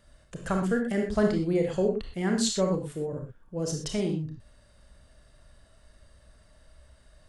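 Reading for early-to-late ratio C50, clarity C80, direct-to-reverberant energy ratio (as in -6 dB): 4.5 dB, 9.0 dB, 2.5 dB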